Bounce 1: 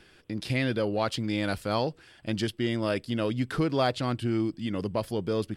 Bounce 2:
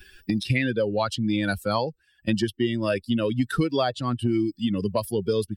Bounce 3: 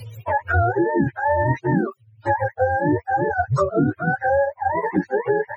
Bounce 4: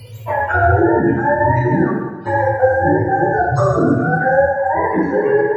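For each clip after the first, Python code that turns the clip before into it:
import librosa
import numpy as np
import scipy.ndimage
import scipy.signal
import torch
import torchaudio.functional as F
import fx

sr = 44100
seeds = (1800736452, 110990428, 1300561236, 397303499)

y1 = fx.bin_expand(x, sr, power=2.0)
y1 = fx.band_squash(y1, sr, depth_pct=100)
y1 = F.gain(torch.from_numpy(y1), 7.5).numpy()
y2 = fx.octave_mirror(y1, sr, pivot_hz=430.0)
y2 = fx.band_squash(y2, sr, depth_pct=40)
y2 = F.gain(torch.from_numpy(y2), 6.0).numpy()
y3 = fx.rev_plate(y2, sr, seeds[0], rt60_s=1.2, hf_ratio=0.95, predelay_ms=0, drr_db=-4.5)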